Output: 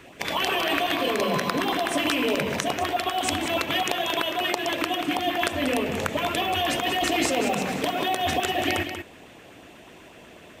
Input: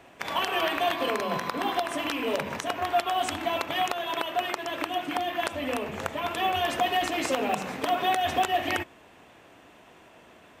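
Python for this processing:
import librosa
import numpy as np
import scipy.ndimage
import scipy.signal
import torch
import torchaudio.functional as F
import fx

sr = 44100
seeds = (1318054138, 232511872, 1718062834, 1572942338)

p1 = fx.over_compress(x, sr, threshold_db=-29.0, ratio=-0.5)
p2 = x + (p1 * librosa.db_to_amplitude(0.5))
p3 = fx.filter_lfo_notch(p2, sr, shape='saw_up', hz=8.1, low_hz=620.0, high_hz=1800.0, q=1.1)
y = p3 + 10.0 ** (-8.5 / 20.0) * np.pad(p3, (int(187 * sr / 1000.0), 0))[:len(p3)]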